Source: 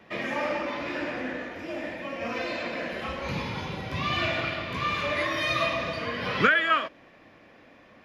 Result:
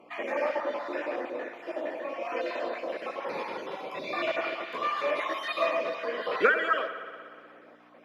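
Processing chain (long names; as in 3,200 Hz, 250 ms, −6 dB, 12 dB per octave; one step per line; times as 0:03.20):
time-frequency cells dropped at random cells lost 30%
parametric band 11,000 Hz +11 dB 1.2 octaves
on a send at −9 dB: convolution reverb RT60 2.1 s, pre-delay 59 ms
on the sum: mains hum 60 Hz, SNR 14 dB
in parallel at −11.5 dB: floating-point word with a short mantissa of 2 bits
on the sum: high-pass filter 420 Hz 24 dB per octave
spectral tilt −4.5 dB per octave
level −2 dB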